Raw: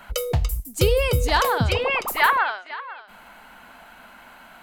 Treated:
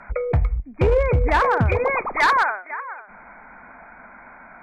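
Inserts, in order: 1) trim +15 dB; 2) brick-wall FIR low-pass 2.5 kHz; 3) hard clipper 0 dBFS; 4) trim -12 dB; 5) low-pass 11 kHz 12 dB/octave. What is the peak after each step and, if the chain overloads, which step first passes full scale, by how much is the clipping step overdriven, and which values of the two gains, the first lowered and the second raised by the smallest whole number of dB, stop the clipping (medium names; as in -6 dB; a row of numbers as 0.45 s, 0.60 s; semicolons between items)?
+8.5 dBFS, +9.5 dBFS, 0.0 dBFS, -12.0 dBFS, -11.5 dBFS; step 1, 9.5 dB; step 1 +5 dB, step 4 -2 dB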